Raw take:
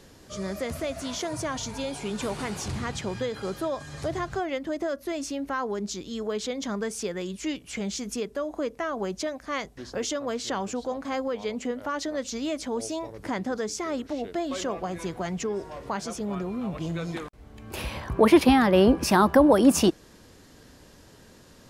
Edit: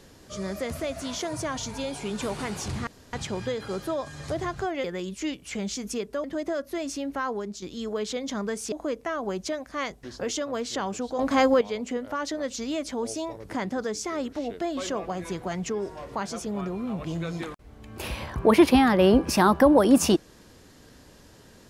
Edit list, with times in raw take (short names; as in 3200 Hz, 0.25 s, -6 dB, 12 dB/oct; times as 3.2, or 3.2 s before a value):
2.87 insert room tone 0.26 s
5.66–5.96 fade out, to -9 dB
7.06–8.46 move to 4.58
10.93–11.35 gain +9.5 dB